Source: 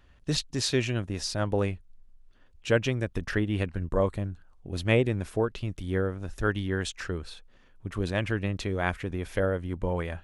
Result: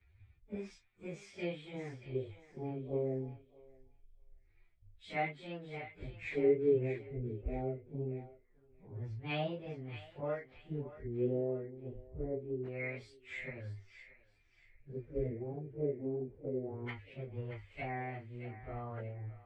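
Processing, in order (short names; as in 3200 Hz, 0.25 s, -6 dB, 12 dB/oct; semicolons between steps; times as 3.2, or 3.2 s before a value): pitch shift by moving bins +5 st; thirty-one-band EQ 100 Hz +10 dB, 400 Hz +6 dB, 8000 Hz +10 dB; compressor 2:1, threshold -53 dBFS, peak gain reduction 18 dB; LFO low-pass square 0.45 Hz 430–2100 Hz; plain phase-vocoder stretch 1.9×; thinning echo 0.631 s, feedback 49%, high-pass 940 Hz, level -7 dB; three-band expander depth 70%; gain +4 dB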